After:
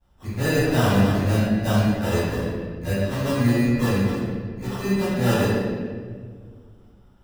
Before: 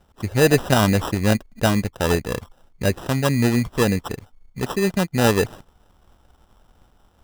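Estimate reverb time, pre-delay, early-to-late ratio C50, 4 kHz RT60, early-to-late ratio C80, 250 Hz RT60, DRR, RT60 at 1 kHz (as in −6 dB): 1.8 s, 11 ms, −5.0 dB, 1.1 s, −1.5 dB, 2.5 s, −18.0 dB, 1.5 s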